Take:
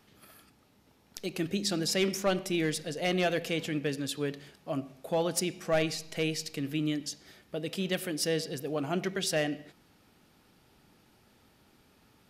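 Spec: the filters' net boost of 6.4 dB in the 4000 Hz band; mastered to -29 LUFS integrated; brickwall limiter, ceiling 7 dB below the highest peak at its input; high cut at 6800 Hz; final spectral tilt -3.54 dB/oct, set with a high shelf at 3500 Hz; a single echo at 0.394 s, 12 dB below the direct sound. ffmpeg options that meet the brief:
-af "lowpass=6.8k,highshelf=f=3.5k:g=5,equalizer=f=4k:t=o:g=5.5,alimiter=limit=-19.5dB:level=0:latency=1,aecho=1:1:394:0.251,volume=2.5dB"

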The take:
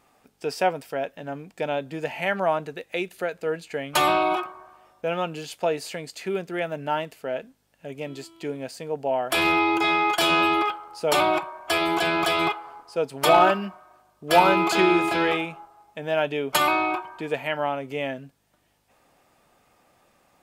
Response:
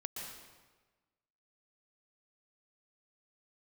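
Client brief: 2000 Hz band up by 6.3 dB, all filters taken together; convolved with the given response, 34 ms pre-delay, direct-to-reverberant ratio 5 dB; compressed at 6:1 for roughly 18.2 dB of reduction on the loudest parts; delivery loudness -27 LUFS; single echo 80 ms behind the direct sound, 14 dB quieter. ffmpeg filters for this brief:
-filter_complex "[0:a]equalizer=f=2k:t=o:g=8,acompressor=threshold=-31dB:ratio=6,aecho=1:1:80:0.2,asplit=2[a][b];[1:a]atrim=start_sample=2205,adelay=34[c];[b][c]afir=irnorm=-1:irlink=0,volume=-4.5dB[d];[a][d]amix=inputs=2:normalize=0,volume=6dB"

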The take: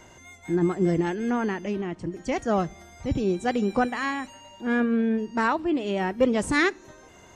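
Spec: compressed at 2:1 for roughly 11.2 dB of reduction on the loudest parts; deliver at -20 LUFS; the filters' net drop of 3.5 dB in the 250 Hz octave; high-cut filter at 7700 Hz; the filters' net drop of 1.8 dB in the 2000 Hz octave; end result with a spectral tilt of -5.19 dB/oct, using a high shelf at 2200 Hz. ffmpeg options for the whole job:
-af "lowpass=7.7k,equalizer=f=250:t=o:g=-4.5,equalizer=f=2k:t=o:g=-4,highshelf=f=2.2k:g=4,acompressor=threshold=-38dB:ratio=2,volume=16.5dB"

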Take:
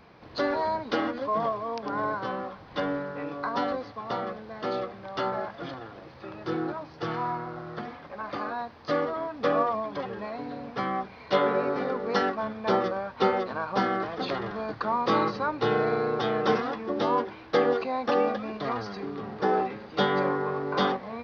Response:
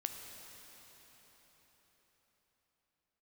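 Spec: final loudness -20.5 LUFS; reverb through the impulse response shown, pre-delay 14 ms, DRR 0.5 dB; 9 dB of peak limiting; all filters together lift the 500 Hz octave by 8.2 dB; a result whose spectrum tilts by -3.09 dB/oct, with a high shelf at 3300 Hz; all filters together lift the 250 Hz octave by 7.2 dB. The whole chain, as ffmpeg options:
-filter_complex "[0:a]equalizer=f=250:t=o:g=6.5,equalizer=f=500:t=o:g=8,highshelf=f=3.3k:g=-3,alimiter=limit=-12.5dB:level=0:latency=1,asplit=2[a][b];[1:a]atrim=start_sample=2205,adelay=14[c];[b][c]afir=irnorm=-1:irlink=0,volume=0dB[d];[a][d]amix=inputs=2:normalize=0,volume=0.5dB"

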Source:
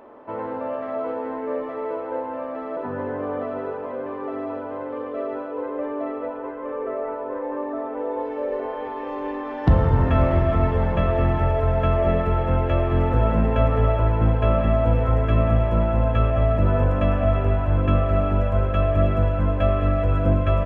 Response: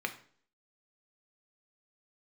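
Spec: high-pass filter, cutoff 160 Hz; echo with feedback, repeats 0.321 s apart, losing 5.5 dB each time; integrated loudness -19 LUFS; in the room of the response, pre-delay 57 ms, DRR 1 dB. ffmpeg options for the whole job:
-filter_complex "[0:a]highpass=160,aecho=1:1:321|642|963|1284|1605|1926|2247:0.531|0.281|0.149|0.079|0.0419|0.0222|0.0118,asplit=2[a][b];[1:a]atrim=start_sample=2205,adelay=57[c];[b][c]afir=irnorm=-1:irlink=0,volume=-5.5dB[d];[a][d]amix=inputs=2:normalize=0,volume=4.5dB"

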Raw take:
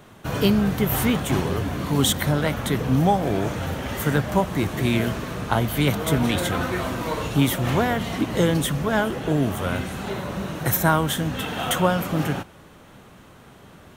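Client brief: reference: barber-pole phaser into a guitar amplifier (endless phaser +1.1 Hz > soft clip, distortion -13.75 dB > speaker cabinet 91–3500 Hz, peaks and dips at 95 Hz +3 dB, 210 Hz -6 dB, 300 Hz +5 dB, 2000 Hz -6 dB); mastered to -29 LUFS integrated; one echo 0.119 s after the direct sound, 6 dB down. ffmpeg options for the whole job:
-filter_complex "[0:a]aecho=1:1:119:0.501,asplit=2[a][b];[b]afreqshift=1.1[c];[a][c]amix=inputs=2:normalize=1,asoftclip=threshold=-19dB,highpass=91,equalizer=f=95:t=q:w=4:g=3,equalizer=f=210:t=q:w=4:g=-6,equalizer=f=300:t=q:w=4:g=5,equalizer=f=2k:t=q:w=4:g=-6,lowpass=f=3.5k:w=0.5412,lowpass=f=3.5k:w=1.3066,volume=-0.5dB"

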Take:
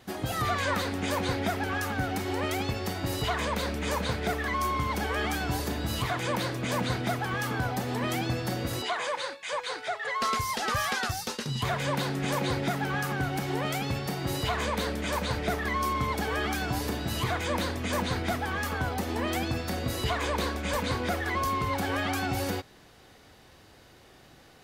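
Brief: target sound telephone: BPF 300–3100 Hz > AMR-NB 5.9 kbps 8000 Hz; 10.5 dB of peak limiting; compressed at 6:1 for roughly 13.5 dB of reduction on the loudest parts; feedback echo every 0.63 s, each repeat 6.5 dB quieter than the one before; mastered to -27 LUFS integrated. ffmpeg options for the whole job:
-af "acompressor=threshold=-40dB:ratio=6,alimiter=level_in=16dB:limit=-24dB:level=0:latency=1,volume=-16dB,highpass=300,lowpass=3.1k,aecho=1:1:630|1260|1890|2520|3150|3780:0.473|0.222|0.105|0.0491|0.0231|0.0109,volume=25.5dB" -ar 8000 -c:a libopencore_amrnb -b:a 5900

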